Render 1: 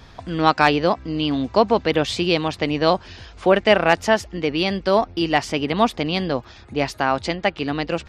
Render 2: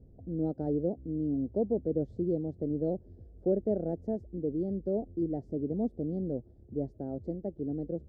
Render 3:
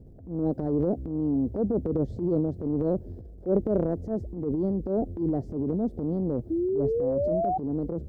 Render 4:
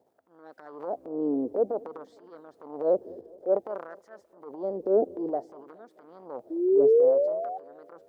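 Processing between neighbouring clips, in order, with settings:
inverse Chebyshev low-pass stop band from 1 kHz, stop band 40 dB; trim -8.5 dB
transient shaper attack -10 dB, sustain +7 dB; painted sound rise, 6.50–7.58 s, 320–770 Hz -32 dBFS; trim +6 dB
LFO high-pass sine 0.55 Hz 410–1600 Hz; feedback echo behind a low-pass 209 ms, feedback 56%, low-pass 950 Hz, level -23 dB

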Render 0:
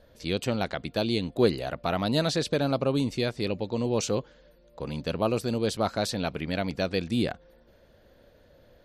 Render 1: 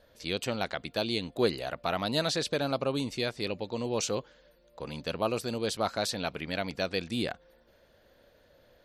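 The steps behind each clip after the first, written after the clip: bass shelf 460 Hz -8 dB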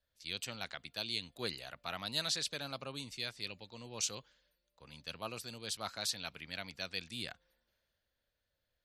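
amplifier tone stack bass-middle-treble 5-5-5; three bands expanded up and down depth 40%; trim +3 dB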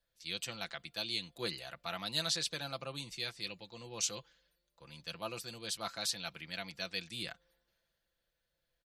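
comb 5.9 ms, depth 53%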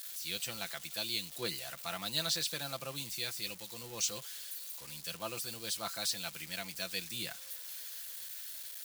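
zero-crossing glitches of -36 dBFS

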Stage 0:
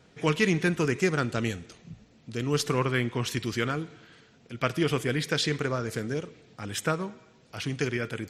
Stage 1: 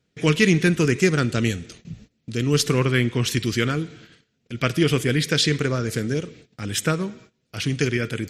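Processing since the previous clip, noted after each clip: gate -52 dBFS, range -20 dB; peaking EQ 880 Hz -10 dB 1.4 oct; trim +8.5 dB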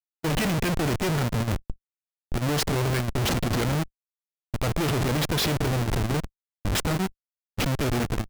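Schmitt trigger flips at -25 dBFS; level held to a coarse grid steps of 12 dB; gate -32 dBFS, range -18 dB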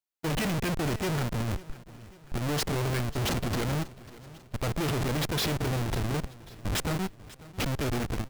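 in parallel at +2.5 dB: peak limiter -28 dBFS, peak gain reduction 10 dB; on the sum: overload inside the chain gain 22 dB; feedback delay 544 ms, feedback 50%, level -19 dB; trim -6 dB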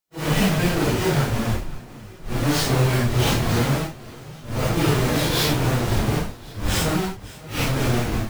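phase randomisation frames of 200 ms; trim +8.5 dB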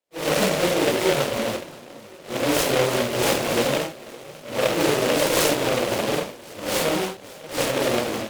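in parallel at -7 dB: sample-and-hold 35×; on the sum: cabinet simulation 330–6200 Hz, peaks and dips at 550 Hz +10 dB, 1.7 kHz -8 dB, 4.1 kHz +5 dB; delay time shaken by noise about 2 kHz, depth 0.11 ms

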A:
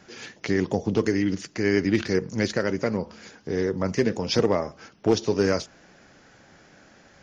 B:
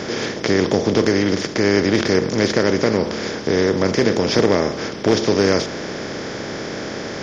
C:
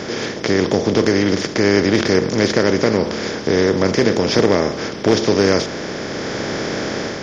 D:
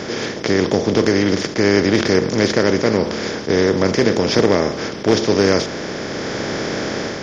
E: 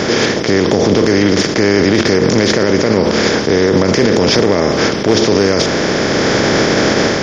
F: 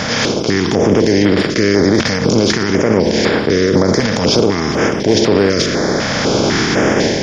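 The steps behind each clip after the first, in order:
spectral levelling over time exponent 0.4; trim +1.5 dB
level rider gain up to 5 dB
attacks held to a fixed rise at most 330 dB/s
loudness maximiser +12.5 dB; trim -1 dB
step-sequenced notch 4 Hz 370–6200 Hz

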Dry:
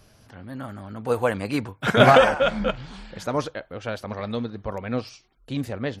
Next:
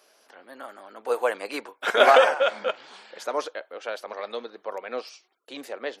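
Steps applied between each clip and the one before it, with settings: high-pass 390 Hz 24 dB/octave; trim -1 dB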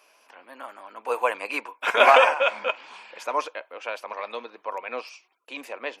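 graphic EQ with 31 bands 125 Hz -12 dB, 200 Hz -3 dB, 400 Hz -4 dB, 1 kHz +10 dB, 2.5 kHz +12 dB, 4 kHz -4 dB; trim -1.5 dB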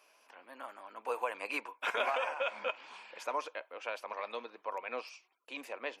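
compression 5:1, threshold -24 dBFS, peak gain reduction 13 dB; trim -6.5 dB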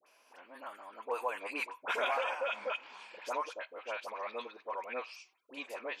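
phase dispersion highs, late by 65 ms, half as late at 1.2 kHz

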